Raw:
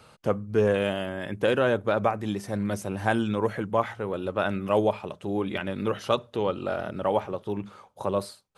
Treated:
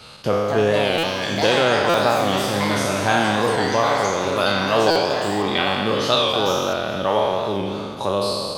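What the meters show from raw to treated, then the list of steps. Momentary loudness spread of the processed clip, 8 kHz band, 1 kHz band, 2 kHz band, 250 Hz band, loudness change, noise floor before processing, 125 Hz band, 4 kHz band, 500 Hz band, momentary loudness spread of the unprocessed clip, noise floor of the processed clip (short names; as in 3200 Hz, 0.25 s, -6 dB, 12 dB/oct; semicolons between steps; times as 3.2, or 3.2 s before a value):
6 LU, +16.5 dB, +10.0 dB, +10.5 dB, +5.0 dB, +8.0 dB, -57 dBFS, +4.5 dB, +17.5 dB, +6.5 dB, 8 LU, -29 dBFS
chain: spectral trails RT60 1.64 s; bell 4000 Hz +11.5 dB 1.1 oct; in parallel at +2.5 dB: compressor, threshold -28 dBFS, peak gain reduction 13.5 dB; on the sum: echoes that change speed 0.303 s, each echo +5 st, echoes 3, each echo -6 dB; thinning echo 0.209 s, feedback 74%, level -15.5 dB; stuck buffer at 0.98/1.89/4.91, samples 256, times 8; record warp 45 rpm, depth 100 cents; gain -1.5 dB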